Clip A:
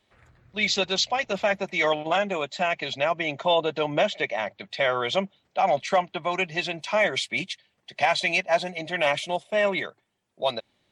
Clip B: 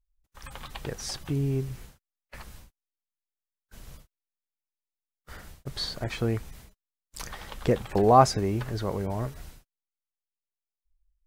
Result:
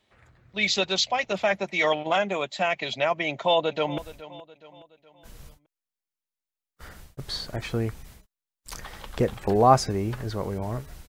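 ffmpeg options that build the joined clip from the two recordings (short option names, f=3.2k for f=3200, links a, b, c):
-filter_complex "[0:a]apad=whole_dur=11.08,atrim=end=11.08,atrim=end=3.982[a];[1:a]atrim=start=2.458:end=9.56[b];[a][b]acrossfade=d=0.004:c1=hsin:c2=hsin,asplit=2[c][d];[d]afade=t=in:st=3.29:d=0.01,afade=t=out:st=3.98:d=0.01,aecho=0:1:420|840|1260|1680:0.149624|0.0673306|0.0302988|0.0136344[e];[c][e]amix=inputs=2:normalize=0"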